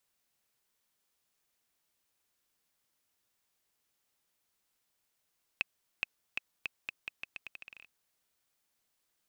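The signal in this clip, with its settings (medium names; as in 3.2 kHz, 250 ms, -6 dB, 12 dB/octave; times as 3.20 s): bouncing ball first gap 0.42 s, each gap 0.82, 2.58 kHz, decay 16 ms -15 dBFS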